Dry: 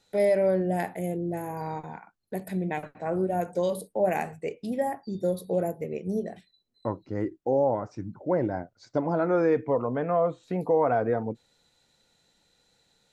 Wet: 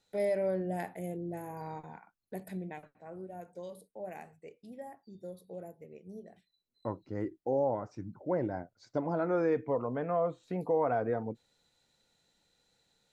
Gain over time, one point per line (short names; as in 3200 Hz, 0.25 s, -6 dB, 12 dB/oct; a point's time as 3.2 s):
2.5 s -8 dB
2.95 s -17.5 dB
6.23 s -17.5 dB
6.89 s -6 dB